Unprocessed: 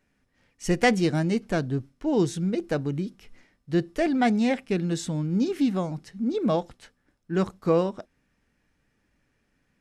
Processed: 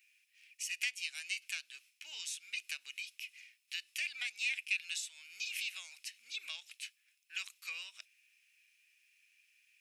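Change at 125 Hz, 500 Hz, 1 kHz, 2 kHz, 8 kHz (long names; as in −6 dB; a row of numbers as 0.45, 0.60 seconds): below −40 dB, below −40 dB, −34.0 dB, −4.5 dB, −2.0 dB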